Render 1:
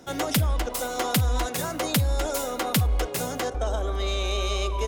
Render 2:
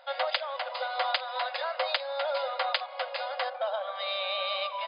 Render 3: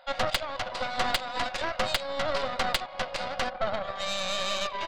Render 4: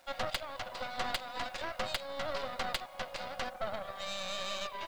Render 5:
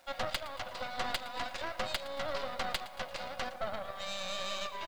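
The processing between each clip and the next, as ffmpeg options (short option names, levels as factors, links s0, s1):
-af "afftfilt=real='re*between(b*sr/4096,500,5000)':imag='im*between(b*sr/4096,500,5000)':win_size=4096:overlap=0.75"
-af "aeval=exprs='0.2*(cos(1*acos(clip(val(0)/0.2,-1,1)))-cos(1*PI/2))+0.0447*(cos(6*acos(clip(val(0)/0.2,-1,1)))-cos(6*PI/2))':c=same"
-af "acrusher=bits=8:mix=0:aa=0.000001,volume=0.398"
-af "aecho=1:1:114|228|342|456|570|684:0.15|0.0883|0.0521|0.0307|0.0181|0.0107"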